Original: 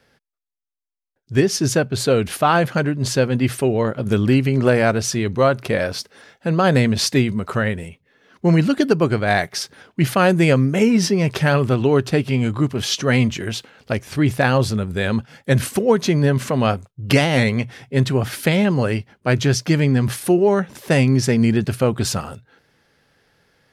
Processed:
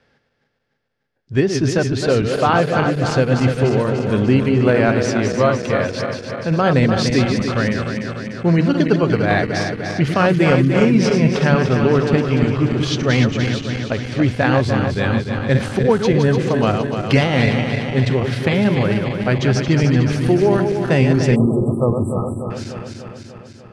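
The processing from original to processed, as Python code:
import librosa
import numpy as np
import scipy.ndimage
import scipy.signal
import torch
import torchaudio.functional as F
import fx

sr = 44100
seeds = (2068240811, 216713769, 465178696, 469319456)

y = fx.reverse_delay_fb(x, sr, ms=148, feedback_pct=79, wet_db=-6)
y = fx.air_absorb(y, sr, metres=100.0)
y = fx.spec_erase(y, sr, start_s=21.36, length_s=1.15, low_hz=1300.0, high_hz=7600.0)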